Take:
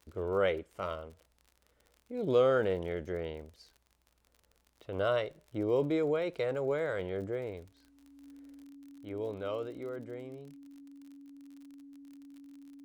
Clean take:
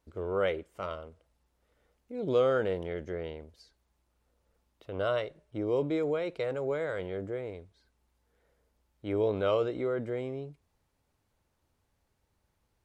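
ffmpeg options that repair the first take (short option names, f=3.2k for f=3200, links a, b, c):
-af "adeclick=t=4,bandreject=f=280:w=30,asetnsamples=n=441:p=0,asendcmd='8.64 volume volume 9dB',volume=0dB"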